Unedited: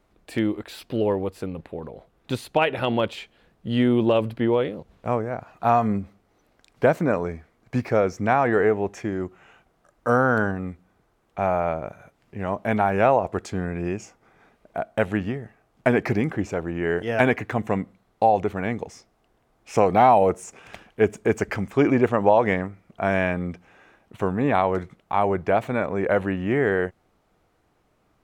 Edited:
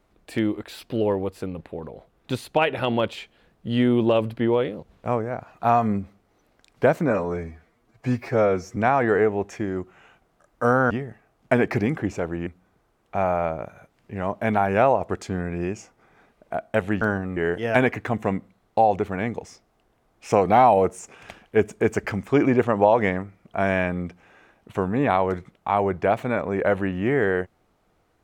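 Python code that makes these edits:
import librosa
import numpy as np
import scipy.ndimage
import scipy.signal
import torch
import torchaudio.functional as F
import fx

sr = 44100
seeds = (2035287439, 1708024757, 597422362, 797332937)

y = fx.edit(x, sr, fx.stretch_span(start_s=7.1, length_s=1.11, factor=1.5),
    fx.swap(start_s=10.35, length_s=0.35, other_s=15.25, other_length_s=1.56), tone=tone)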